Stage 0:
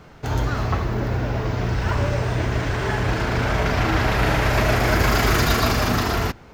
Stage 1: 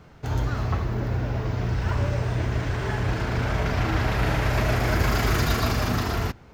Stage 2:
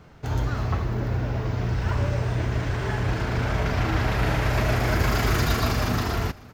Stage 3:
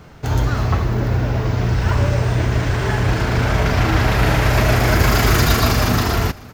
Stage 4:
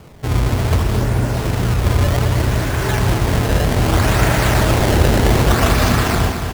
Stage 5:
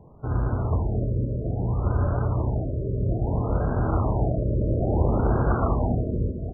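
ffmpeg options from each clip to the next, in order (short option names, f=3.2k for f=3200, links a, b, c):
-af "equalizer=f=90:t=o:w=2.3:g=4.5,volume=-6dB"
-af "aecho=1:1:549:0.0708"
-af "highshelf=f=5.8k:g=5,volume=7.5dB"
-filter_complex "[0:a]acrusher=samples=22:mix=1:aa=0.000001:lfo=1:lforange=35.2:lforate=0.64,asplit=2[a][b];[b]aecho=0:1:219|438|657|876|1095|1314|1533|1752:0.422|0.249|0.147|0.0866|0.0511|0.0301|0.0178|0.0105[c];[a][c]amix=inputs=2:normalize=0,volume=1dB"
-af "asuperstop=centerf=1800:order=4:qfactor=5.3,afftfilt=real='re*lt(b*sr/1024,600*pow(1700/600,0.5+0.5*sin(2*PI*0.6*pts/sr)))':imag='im*lt(b*sr/1024,600*pow(1700/600,0.5+0.5*sin(2*PI*0.6*pts/sr)))':win_size=1024:overlap=0.75,volume=-8dB"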